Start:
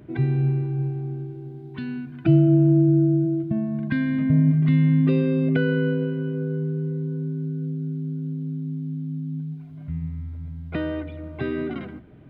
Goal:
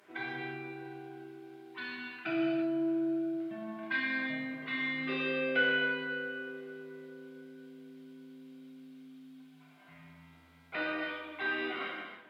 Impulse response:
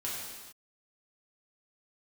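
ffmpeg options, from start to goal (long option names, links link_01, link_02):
-filter_complex "[0:a]highpass=960[link_01];[1:a]atrim=start_sample=2205,afade=type=out:start_time=0.33:duration=0.01,atrim=end_sample=14994,asetrate=33957,aresample=44100[link_02];[link_01][link_02]afir=irnorm=-1:irlink=0"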